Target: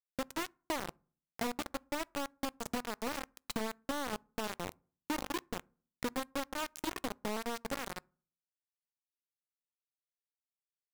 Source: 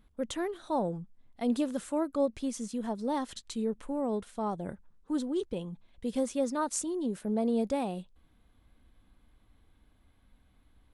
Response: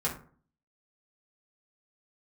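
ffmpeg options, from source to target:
-filter_complex "[0:a]aemphasis=mode=reproduction:type=50fm,bandreject=frequency=75.54:width_type=h:width=4,bandreject=frequency=151.08:width_type=h:width=4,bandreject=frequency=226.62:width_type=h:width=4,bandreject=frequency=302.16:width_type=h:width=4,bandreject=frequency=377.7:width_type=h:width=4,bandreject=frequency=453.24:width_type=h:width=4,bandreject=frequency=528.78:width_type=h:width=4,acompressor=threshold=-44dB:ratio=16,acrusher=bits=6:mix=0:aa=0.000001,asplit=2[link_01][link_02];[1:a]atrim=start_sample=2205[link_03];[link_02][link_03]afir=irnorm=-1:irlink=0,volume=-29.5dB[link_04];[link_01][link_04]amix=inputs=2:normalize=0,volume=8.5dB"

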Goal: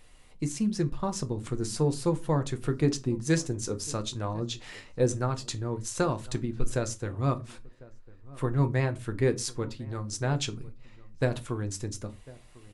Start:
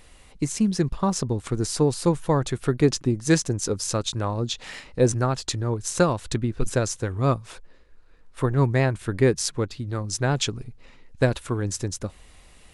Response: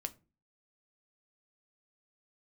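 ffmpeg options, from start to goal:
-filter_complex "[0:a]asplit=2[link_01][link_02];[link_02]adelay=1050,volume=-21dB,highshelf=frequency=4000:gain=-23.6[link_03];[link_01][link_03]amix=inputs=2:normalize=0[link_04];[1:a]atrim=start_sample=2205,atrim=end_sample=6174[link_05];[link_04][link_05]afir=irnorm=-1:irlink=0,volume=-5dB"

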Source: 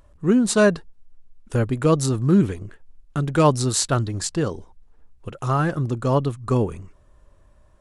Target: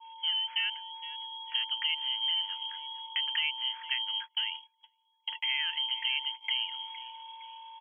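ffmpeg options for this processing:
ffmpeg -i in.wav -filter_complex "[0:a]acompressor=threshold=-28dB:ratio=8,aeval=exprs='val(0)+0.0141*sin(2*PI*2400*n/s)':channel_layout=same,lowpass=frequency=2800:width_type=q:width=0.5098,lowpass=frequency=2800:width_type=q:width=0.6013,lowpass=frequency=2800:width_type=q:width=0.9,lowpass=frequency=2800:width_type=q:width=2.563,afreqshift=-3300,asplit=5[link_01][link_02][link_03][link_04][link_05];[link_02]adelay=462,afreqshift=50,volume=-16dB[link_06];[link_03]adelay=924,afreqshift=100,volume=-22.4dB[link_07];[link_04]adelay=1386,afreqshift=150,volume=-28.8dB[link_08];[link_05]adelay=1848,afreqshift=200,volume=-35.1dB[link_09];[link_01][link_06][link_07][link_08][link_09]amix=inputs=5:normalize=0,adynamicequalizer=threshold=0.00794:dfrequency=2100:dqfactor=0.83:tfrequency=2100:tqfactor=0.83:attack=5:release=100:ratio=0.375:range=2:mode=boostabove:tftype=bell,highpass=frequency=970:width=0.5412,highpass=frequency=970:width=1.3066,asplit=3[link_10][link_11][link_12];[link_10]afade=type=out:start_time=4.01:duration=0.02[link_13];[link_11]agate=range=-30dB:threshold=-33dB:ratio=16:detection=peak,afade=type=in:start_time=4.01:duration=0.02,afade=type=out:start_time=6.57:duration=0.02[link_14];[link_12]afade=type=in:start_time=6.57:duration=0.02[link_15];[link_13][link_14][link_15]amix=inputs=3:normalize=0,volume=-4dB" out.wav

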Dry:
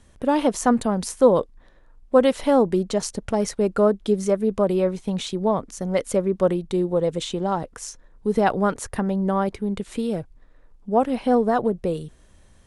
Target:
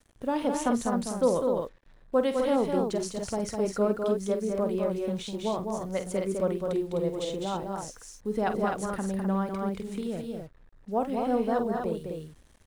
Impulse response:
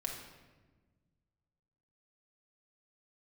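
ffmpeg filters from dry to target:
-af "aecho=1:1:47|204|255:0.299|0.562|0.531,acrusher=bits=7:mix=0:aa=0.5,volume=-9dB"

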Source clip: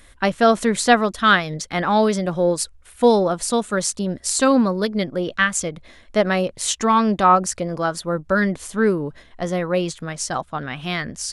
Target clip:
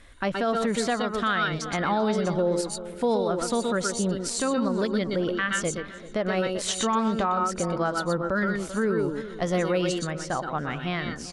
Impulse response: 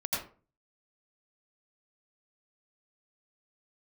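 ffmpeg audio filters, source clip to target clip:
-filter_complex "[1:a]atrim=start_sample=2205,atrim=end_sample=3528,asetrate=28665,aresample=44100[link_01];[0:a][link_01]afir=irnorm=-1:irlink=0,acompressor=threshold=-16dB:ratio=2.5,aemphasis=mode=reproduction:type=50fm,asplit=2[link_02][link_03];[link_03]adelay=388,lowpass=frequency=3000:poles=1,volume=-17dB,asplit=2[link_04][link_05];[link_05]adelay=388,lowpass=frequency=3000:poles=1,volume=0.5,asplit=2[link_06][link_07];[link_07]adelay=388,lowpass=frequency=3000:poles=1,volume=0.5,asplit=2[link_08][link_09];[link_09]adelay=388,lowpass=frequency=3000:poles=1,volume=0.5[link_10];[link_02][link_04][link_06][link_08][link_10]amix=inputs=5:normalize=0,alimiter=limit=-14dB:level=0:latency=1:release=77,asetnsamples=nb_out_samples=441:pad=0,asendcmd='8.99 highshelf g 9.5;10.07 highshelf g -4.5',highshelf=frequency=3400:gain=3,volume=-2.5dB"

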